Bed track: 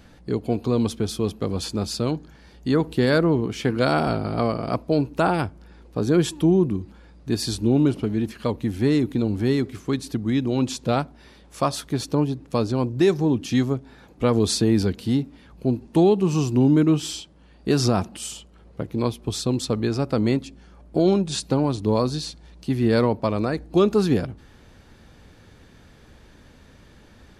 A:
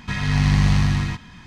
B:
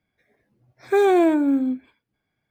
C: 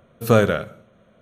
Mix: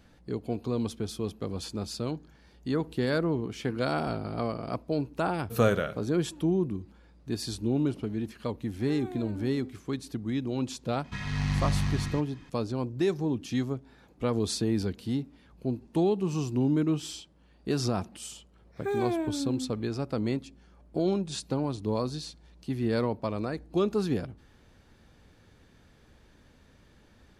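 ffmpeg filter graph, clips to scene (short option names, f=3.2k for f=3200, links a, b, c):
-filter_complex "[2:a]asplit=2[a][b];[0:a]volume=-8.5dB[c];[a]acompressor=threshold=-28dB:ratio=5:attack=8.8:release=83:knee=1:detection=peak[d];[3:a]atrim=end=1.21,asetpts=PTS-STARTPTS,volume=-8dB,afade=t=in:d=0.004:c=hsin,afade=t=out:st=1.206:d=0.004:c=hsin,adelay=233289S[e];[d]atrim=end=2.5,asetpts=PTS-STARTPTS,volume=-13dB,afade=t=in:d=0.004:c=hsin,afade=t=out:st=2.496:d=0.004:c=hsin,adelay=7970[f];[1:a]atrim=end=1.46,asetpts=PTS-STARTPTS,volume=-10.5dB,afade=t=in:d=0.004:c=hsin,afade=t=out:st=1.456:d=0.004:c=hsin,adelay=11040[g];[b]atrim=end=2.5,asetpts=PTS-STARTPTS,volume=-13dB,afade=t=in:d=0.004:c=hsin,afade=t=out:st=2.496:d=0.004:c=hsin,adelay=17930[h];[c][e][f][g][h]amix=inputs=5:normalize=0"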